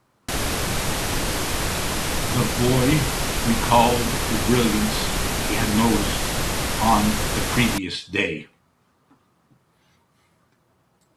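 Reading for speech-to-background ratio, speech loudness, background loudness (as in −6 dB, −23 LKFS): 1.0 dB, −23.0 LKFS, −24.0 LKFS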